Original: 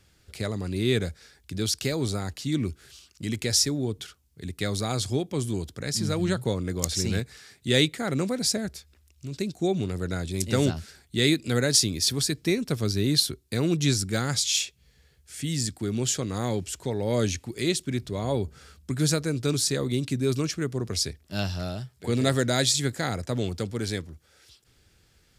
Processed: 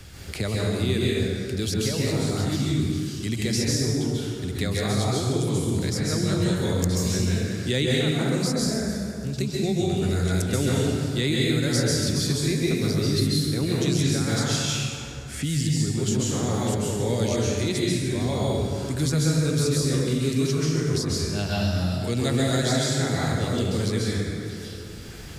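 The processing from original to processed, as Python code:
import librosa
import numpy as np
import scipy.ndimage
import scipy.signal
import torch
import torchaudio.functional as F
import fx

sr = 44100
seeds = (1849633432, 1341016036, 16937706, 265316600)

y = fx.low_shelf(x, sr, hz=120.0, db=7.0)
y = fx.rev_plate(y, sr, seeds[0], rt60_s=1.6, hf_ratio=0.6, predelay_ms=120, drr_db=-6.0)
y = fx.band_squash(y, sr, depth_pct=70)
y = y * librosa.db_to_amplitude(-6.0)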